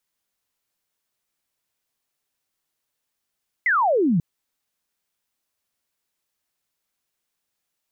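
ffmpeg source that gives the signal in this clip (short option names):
-f lavfi -i "aevalsrc='0.158*clip(t/0.002,0,1)*clip((0.54-t)/0.002,0,1)*sin(2*PI*2100*0.54/log(150/2100)*(exp(log(150/2100)*t/0.54)-1))':d=0.54:s=44100"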